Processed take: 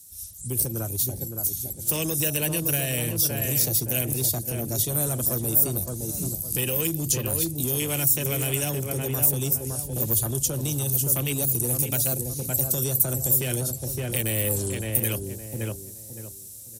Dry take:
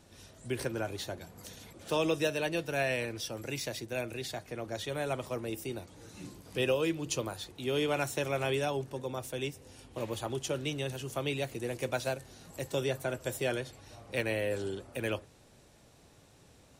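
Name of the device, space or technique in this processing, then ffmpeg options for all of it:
FM broadcast chain: -filter_complex "[0:a]afwtdn=0.0126,highpass=41,bass=frequency=250:gain=14,treble=frequency=4000:gain=13,asplit=2[link_01][link_02];[link_02]adelay=564,lowpass=frequency=1200:poles=1,volume=-7dB,asplit=2[link_03][link_04];[link_04]adelay=564,lowpass=frequency=1200:poles=1,volume=0.32,asplit=2[link_05][link_06];[link_06]adelay=564,lowpass=frequency=1200:poles=1,volume=0.32,asplit=2[link_07][link_08];[link_08]adelay=564,lowpass=frequency=1200:poles=1,volume=0.32[link_09];[link_01][link_03][link_05][link_07][link_09]amix=inputs=5:normalize=0,dynaudnorm=framelen=240:gausssize=17:maxgain=6dB,acrossover=split=680|1500|4700[link_10][link_11][link_12][link_13];[link_10]acompressor=threshold=-22dB:ratio=4[link_14];[link_11]acompressor=threshold=-43dB:ratio=4[link_15];[link_12]acompressor=threshold=-37dB:ratio=4[link_16];[link_13]acompressor=threshold=-49dB:ratio=4[link_17];[link_14][link_15][link_16][link_17]amix=inputs=4:normalize=0,aemphasis=mode=production:type=75fm,alimiter=limit=-19.5dB:level=0:latency=1:release=49,asoftclip=type=hard:threshold=-22dB,lowpass=frequency=15000:width=0.5412,lowpass=frequency=15000:width=1.3066,aemphasis=mode=production:type=75fm"

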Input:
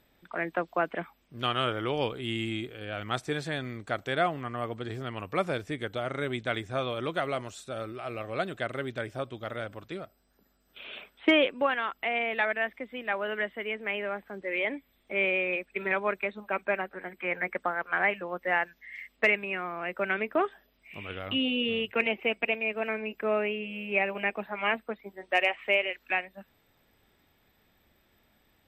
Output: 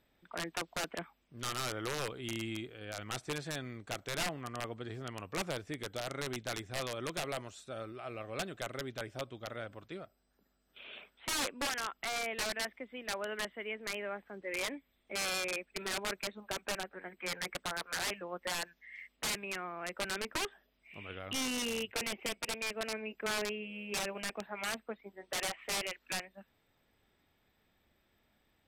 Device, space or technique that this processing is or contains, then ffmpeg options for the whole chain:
overflowing digital effects unit: -af "aeval=exprs='(mod(11.9*val(0)+1,2)-1)/11.9':channel_layout=same,lowpass=11000,volume=-6.5dB"

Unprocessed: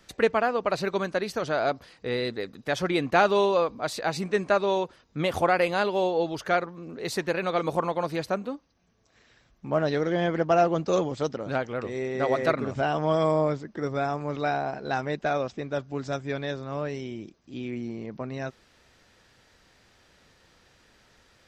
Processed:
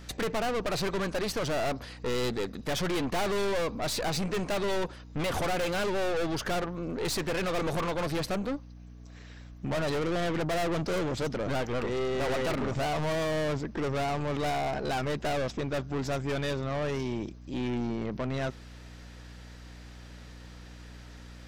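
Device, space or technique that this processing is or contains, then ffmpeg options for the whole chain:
valve amplifier with mains hum: -af "aeval=exprs='(tanh(63.1*val(0)+0.45)-tanh(0.45))/63.1':channel_layout=same,aeval=exprs='val(0)+0.002*(sin(2*PI*60*n/s)+sin(2*PI*2*60*n/s)/2+sin(2*PI*3*60*n/s)/3+sin(2*PI*4*60*n/s)/4+sin(2*PI*5*60*n/s)/5)':channel_layout=same,volume=8dB"

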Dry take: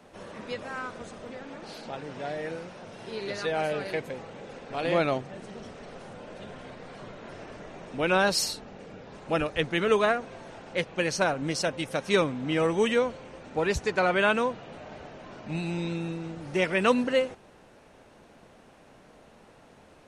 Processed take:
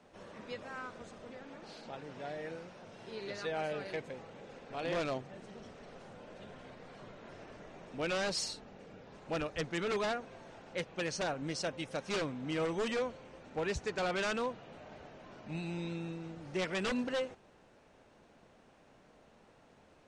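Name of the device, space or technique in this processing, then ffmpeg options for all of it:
synthesiser wavefolder: -af "aeval=exprs='0.1*(abs(mod(val(0)/0.1+3,4)-2)-1)':channel_layout=same,lowpass=frequency=8600:width=0.5412,lowpass=frequency=8600:width=1.3066,volume=-8dB"

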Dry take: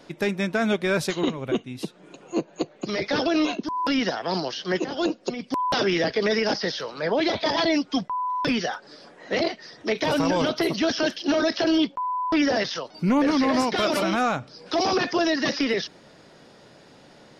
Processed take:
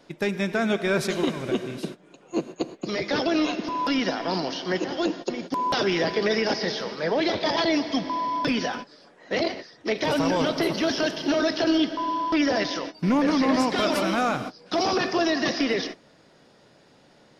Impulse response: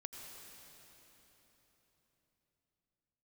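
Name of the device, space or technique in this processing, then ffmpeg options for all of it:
keyed gated reverb: -filter_complex "[0:a]asplit=3[link_01][link_02][link_03];[1:a]atrim=start_sample=2205[link_04];[link_02][link_04]afir=irnorm=-1:irlink=0[link_05];[link_03]apad=whole_len=767277[link_06];[link_05][link_06]sidechaingate=range=-33dB:threshold=-37dB:ratio=16:detection=peak,volume=2dB[link_07];[link_01][link_07]amix=inputs=2:normalize=0,volume=-5.5dB"

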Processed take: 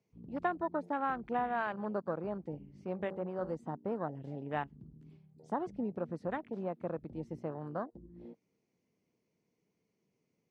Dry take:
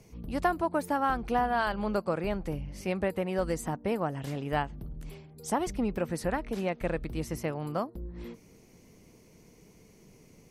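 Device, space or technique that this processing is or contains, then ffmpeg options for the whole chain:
over-cleaned archive recording: -filter_complex "[0:a]asplit=3[link_01][link_02][link_03];[link_01]afade=type=out:start_time=2.53:duration=0.02[link_04];[link_02]bandreject=frequency=47.61:width_type=h:width=4,bandreject=frequency=95.22:width_type=h:width=4,bandreject=frequency=142.83:width_type=h:width=4,bandreject=frequency=190.44:width_type=h:width=4,bandreject=frequency=238.05:width_type=h:width=4,bandreject=frequency=285.66:width_type=h:width=4,bandreject=frequency=333.27:width_type=h:width=4,bandreject=frequency=380.88:width_type=h:width=4,bandreject=frequency=428.49:width_type=h:width=4,bandreject=frequency=476.1:width_type=h:width=4,bandreject=frequency=523.71:width_type=h:width=4,bandreject=frequency=571.32:width_type=h:width=4,bandreject=frequency=618.93:width_type=h:width=4,bandreject=frequency=666.54:width_type=h:width=4,bandreject=frequency=714.15:width_type=h:width=4,bandreject=frequency=761.76:width_type=h:width=4,bandreject=frequency=809.37:width_type=h:width=4,bandreject=frequency=856.98:width_type=h:width=4,bandreject=frequency=904.59:width_type=h:width=4,bandreject=frequency=952.2:width_type=h:width=4,bandreject=frequency=999.81:width_type=h:width=4,bandreject=frequency=1047.42:width_type=h:width=4,bandreject=frequency=1095.03:width_type=h:width=4,bandreject=frequency=1142.64:width_type=h:width=4,bandreject=frequency=1190.25:width_type=h:width=4,afade=type=in:start_time=2.53:duration=0.02,afade=type=out:start_time=3.52:duration=0.02[link_05];[link_03]afade=type=in:start_time=3.52:duration=0.02[link_06];[link_04][link_05][link_06]amix=inputs=3:normalize=0,highpass=130,lowpass=5000,afwtdn=0.0141,volume=-6dB"

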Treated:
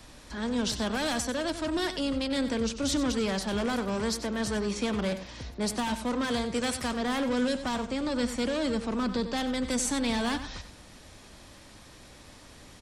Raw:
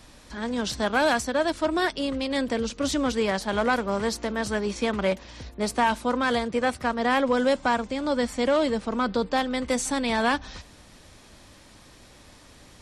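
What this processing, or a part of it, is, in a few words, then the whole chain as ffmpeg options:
one-band saturation: -filter_complex "[0:a]asettb=1/sr,asplit=3[link_01][link_02][link_03];[link_01]atrim=end=6.544[link_04];[link_02]atrim=start=6.54:end=6.95,asetpts=PTS-STARTPTS,afade=type=in:duration=0.004:curve=qsin,afade=type=out:start_time=0.406:duration=0.004:curve=qsin,highshelf=frequency=2400:gain=9.5[link_05];[link_03]atrim=start=6.946[link_06];[link_04][link_05]acrossfade=duration=0.004:curve1=hsin:curve2=qsin[link_07];[link_07][link_06]acrossfade=duration=0.004:curve1=qsin:curve2=hsin,acrossover=split=290|3300[link_08][link_09][link_10];[link_09]asoftclip=type=tanh:threshold=-31.5dB[link_11];[link_08][link_11][link_10]amix=inputs=3:normalize=0,asplit=2[link_12][link_13];[link_13]adelay=93.29,volume=-11dB,highshelf=frequency=4000:gain=-2.1[link_14];[link_12][link_14]amix=inputs=2:normalize=0"

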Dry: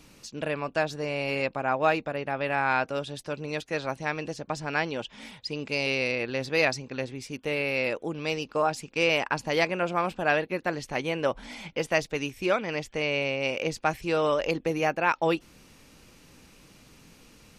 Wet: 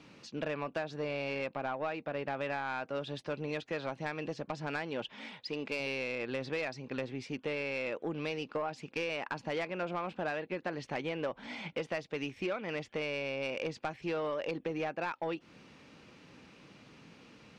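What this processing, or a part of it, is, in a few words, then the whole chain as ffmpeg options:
AM radio: -filter_complex "[0:a]asettb=1/sr,asplit=3[link_01][link_02][link_03];[link_01]atrim=end=5.134[link_04];[link_02]atrim=start=5.13:end=5.8,asetpts=PTS-STARTPTS,afade=type=in:duration=0.004:curve=qsin,afade=type=out:start_time=0.666:duration=0.004:curve=qsin,equalizer=frequency=70:width=0.58:gain=-11.5[link_05];[link_03]atrim=start=5.796[link_06];[link_04][link_05]acrossfade=duration=0.004:curve1=hsin:curve2=qsin[link_07];[link_07][link_06]acrossfade=duration=0.004:curve1=qsin:curve2=hsin,highpass=120,lowpass=3600,acompressor=threshold=-30dB:ratio=10,asoftclip=type=tanh:threshold=-26dB"

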